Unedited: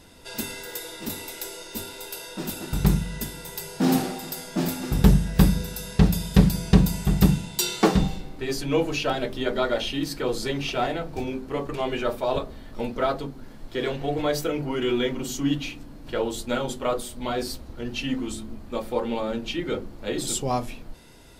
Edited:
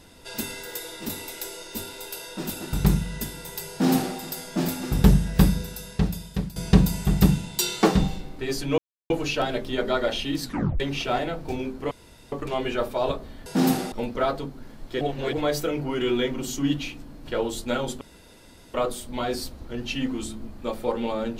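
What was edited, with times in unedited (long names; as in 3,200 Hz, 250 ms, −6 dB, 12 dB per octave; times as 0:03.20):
0:03.71–0:04.17: duplicate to 0:12.73
0:05.36–0:06.56: fade out, to −17.5 dB
0:08.78: splice in silence 0.32 s
0:10.11: tape stop 0.37 s
0:11.59: splice in room tone 0.41 s
0:13.82–0:14.14: reverse
0:16.82: splice in room tone 0.73 s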